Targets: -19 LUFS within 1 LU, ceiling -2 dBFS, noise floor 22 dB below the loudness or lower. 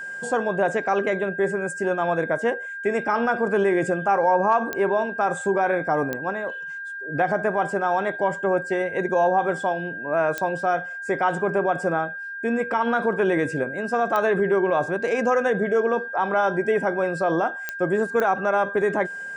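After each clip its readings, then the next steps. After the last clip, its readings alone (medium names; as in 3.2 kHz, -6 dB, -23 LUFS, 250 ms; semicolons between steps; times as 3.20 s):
clicks found 6; steady tone 1.6 kHz; tone level -31 dBFS; loudness -23.0 LUFS; peak level -8.5 dBFS; loudness target -19.0 LUFS
-> de-click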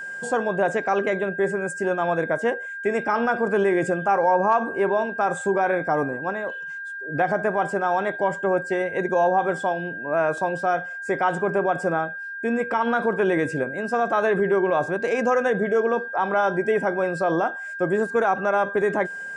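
clicks found 0; steady tone 1.6 kHz; tone level -31 dBFS
-> band-stop 1.6 kHz, Q 30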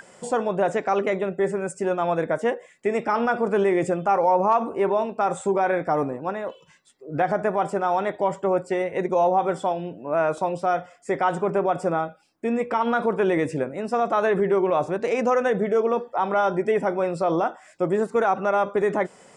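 steady tone not found; loudness -23.5 LUFS; peak level -9.5 dBFS; loudness target -19.0 LUFS
-> trim +4.5 dB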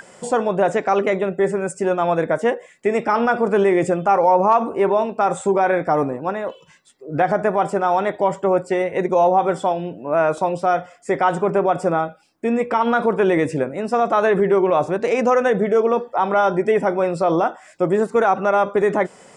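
loudness -19.0 LUFS; peak level -5.0 dBFS; noise floor -50 dBFS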